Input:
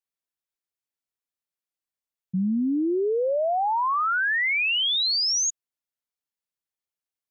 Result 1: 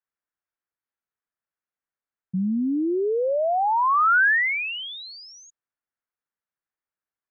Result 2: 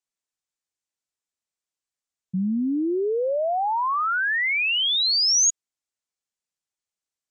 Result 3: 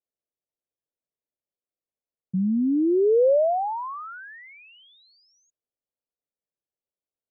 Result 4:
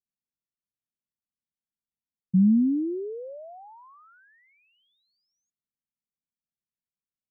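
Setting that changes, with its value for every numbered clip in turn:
resonant low-pass, frequency: 1.6 kHz, 7.5 kHz, 550 Hz, 210 Hz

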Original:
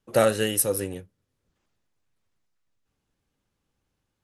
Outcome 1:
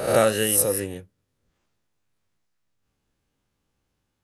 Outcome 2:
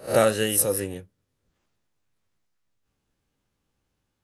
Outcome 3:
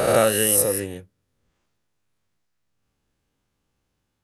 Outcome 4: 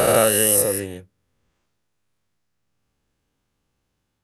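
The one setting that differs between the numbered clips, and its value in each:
reverse spectral sustain, rising 60 dB in: 0.69 s, 0.31 s, 1.48 s, 3.14 s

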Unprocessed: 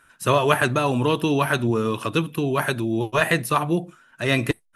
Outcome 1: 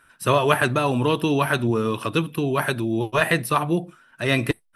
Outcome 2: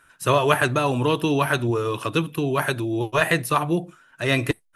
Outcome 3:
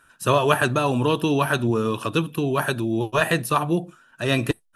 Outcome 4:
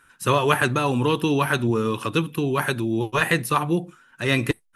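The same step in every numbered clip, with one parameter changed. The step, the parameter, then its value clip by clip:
band-stop, frequency: 6.8 kHz, 220 Hz, 2.1 kHz, 640 Hz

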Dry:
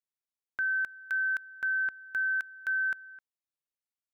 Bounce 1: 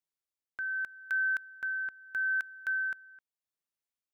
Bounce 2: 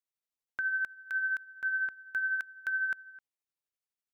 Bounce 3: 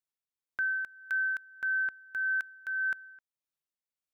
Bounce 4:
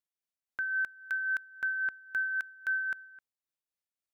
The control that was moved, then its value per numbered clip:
tremolo, rate: 0.81 Hz, 12 Hz, 1.7 Hz, 3.7 Hz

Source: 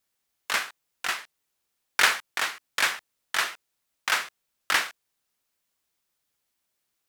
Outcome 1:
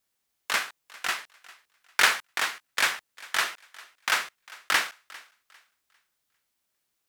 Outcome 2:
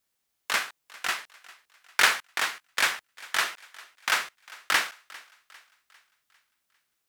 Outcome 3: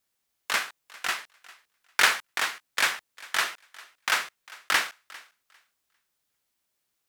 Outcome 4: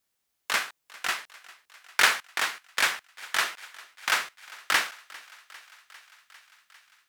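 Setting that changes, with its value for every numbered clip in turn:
thinning echo, feedback: 28%, 47%, 18%, 75%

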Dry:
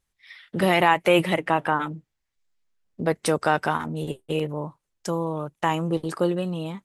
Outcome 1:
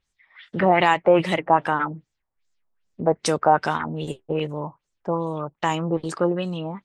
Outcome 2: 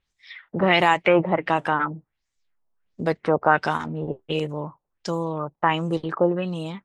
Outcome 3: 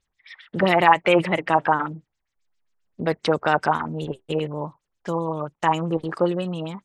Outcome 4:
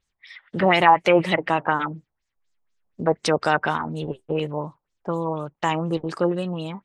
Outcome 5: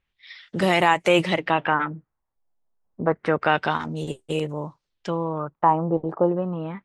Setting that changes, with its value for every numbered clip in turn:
LFO low-pass, rate: 2.5 Hz, 1.4 Hz, 7.5 Hz, 4.1 Hz, 0.29 Hz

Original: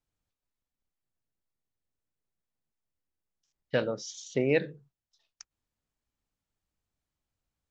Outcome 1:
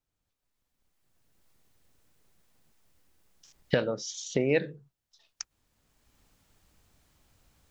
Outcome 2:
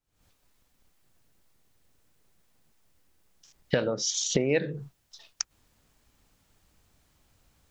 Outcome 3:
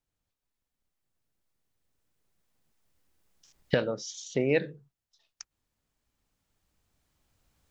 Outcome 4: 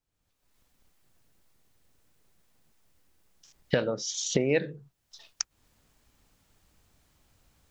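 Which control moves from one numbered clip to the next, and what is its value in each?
recorder AGC, rising by: 14 dB/s, 87 dB/s, 5.1 dB/s, 36 dB/s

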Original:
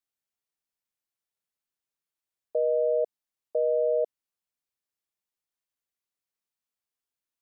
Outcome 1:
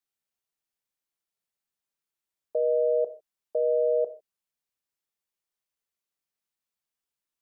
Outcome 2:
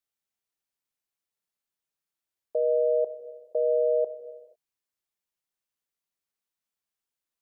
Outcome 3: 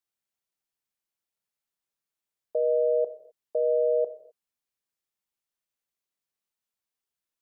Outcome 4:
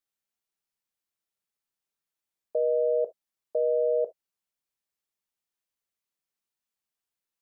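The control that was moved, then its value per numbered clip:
gated-style reverb, gate: 170 ms, 520 ms, 280 ms, 90 ms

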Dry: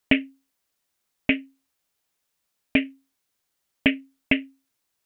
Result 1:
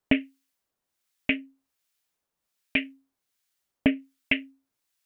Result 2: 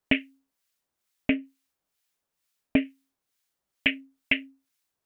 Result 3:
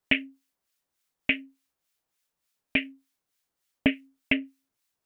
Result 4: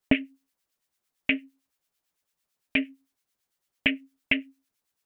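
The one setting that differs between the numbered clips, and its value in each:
harmonic tremolo, rate: 1.3 Hz, 2.2 Hz, 3.4 Hz, 8.9 Hz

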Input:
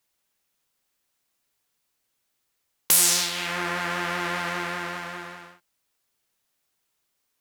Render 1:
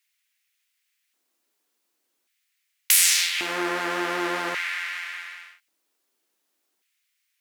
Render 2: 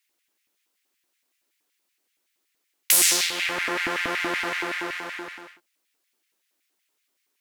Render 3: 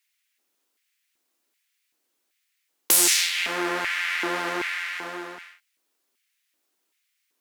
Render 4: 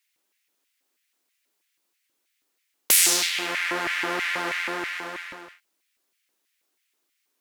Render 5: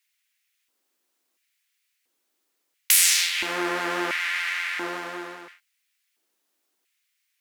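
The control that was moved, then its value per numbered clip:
LFO high-pass, rate: 0.44 Hz, 5.3 Hz, 1.3 Hz, 3.1 Hz, 0.73 Hz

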